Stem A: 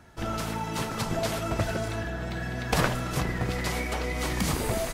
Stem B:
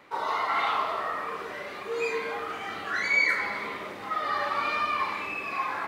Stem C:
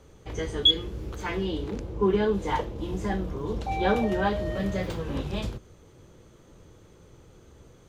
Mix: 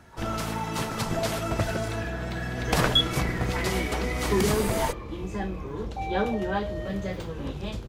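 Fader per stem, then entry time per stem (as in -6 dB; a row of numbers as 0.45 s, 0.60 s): +1.0 dB, -19.0 dB, -2.5 dB; 0.00 s, 0.00 s, 2.30 s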